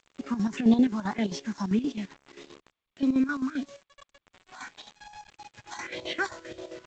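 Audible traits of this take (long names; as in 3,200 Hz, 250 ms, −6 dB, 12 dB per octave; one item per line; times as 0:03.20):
phaser sweep stages 4, 1.7 Hz, lowest notch 430–1,600 Hz
a quantiser's noise floor 8 bits, dither none
chopped level 7.6 Hz, depth 65%, duty 60%
G.722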